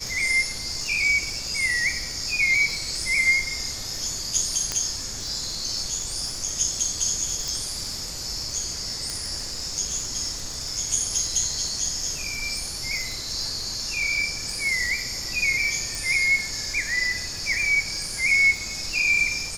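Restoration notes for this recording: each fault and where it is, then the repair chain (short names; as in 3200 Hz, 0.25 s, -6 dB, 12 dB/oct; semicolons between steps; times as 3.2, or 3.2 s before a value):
crackle 34/s -29 dBFS
4.72 pop -9 dBFS
7.48 pop
9.1 pop
15.95 pop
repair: de-click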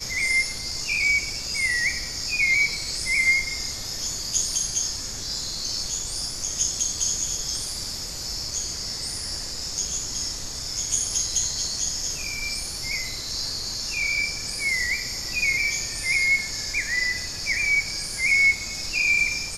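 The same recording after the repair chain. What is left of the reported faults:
9.1 pop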